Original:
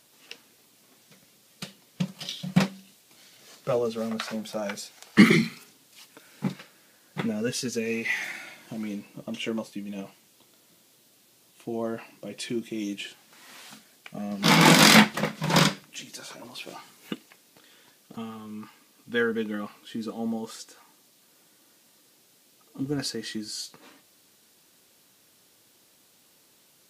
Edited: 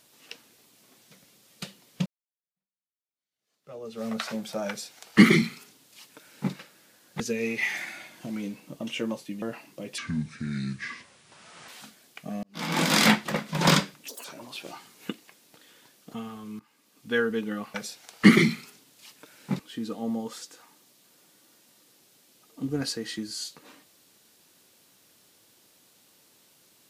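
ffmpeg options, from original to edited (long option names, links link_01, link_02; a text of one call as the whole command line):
ffmpeg -i in.wav -filter_complex "[0:a]asplit=12[link_01][link_02][link_03][link_04][link_05][link_06][link_07][link_08][link_09][link_10][link_11][link_12];[link_01]atrim=end=2.06,asetpts=PTS-STARTPTS,afade=type=out:start_time=2.056:duration=0.004:curve=hsin[link_13];[link_02]atrim=start=2.06:end=7.202,asetpts=PTS-STARTPTS,afade=type=in:duration=2.03:curve=exp[link_14];[link_03]atrim=start=7.668:end=9.892[link_15];[link_04]atrim=start=11.868:end=12.434[link_16];[link_05]atrim=start=12.43:end=13.57,asetpts=PTS-STARTPTS,asetrate=29547,aresample=44100[link_17];[link_06]atrim=start=13.566:end=14.32,asetpts=PTS-STARTPTS,afade=type=out:start_time=0.75:duration=0.004:curve=hsin[link_18];[link_07]atrim=start=14.32:end=15.974,asetpts=PTS-STARTPTS,afade=type=in:duration=1.06[link_19];[link_08]atrim=start=15.97:end=16.27,asetpts=PTS-STARTPTS,asetrate=81144,aresample=44100,atrim=end_sample=7190,asetpts=PTS-STARTPTS[link_20];[link_09]atrim=start=16.266:end=18.62,asetpts=PTS-STARTPTS,afade=type=out:start_time=2.35:duration=0.004:curve=hsin:silence=0.105925[link_21];[link_10]atrim=start=18.62:end=19.772,asetpts=PTS-STARTPTS,afade=type=in:duration=0.53:silence=0.105925[link_22];[link_11]atrim=start=4.678:end=6.532[link_23];[link_12]atrim=start=19.768[link_24];[link_13][link_14]concat=n=2:v=0:a=1[link_25];[link_25][link_15]acrossfade=duration=0.004:curve1=hsin:curve2=hsin[link_26];[link_26][link_16]acrossfade=duration=0.004:curve1=hsin:curve2=hsin[link_27];[link_27][link_17]acrossfade=duration=0.004:curve1=hsin:curve2=hsin[link_28];[link_18][link_19]concat=n=2:v=0:a=1[link_29];[link_28][link_29]acrossfade=duration=0.004:curve1=hsin:curve2=hsin[link_30];[link_30][link_20]acrossfade=duration=0.004:curve1=hsin:curve2=hsin[link_31];[link_21][link_22]concat=n=2:v=0:a=1[link_32];[link_31][link_32]acrossfade=duration=0.004:curve1=hsin:curve2=hsin[link_33];[link_33][link_23]acrossfade=duration=0.004:curve1=hsin:curve2=hsin[link_34];[link_34][link_24]acrossfade=duration=0.004:curve1=hsin:curve2=hsin" out.wav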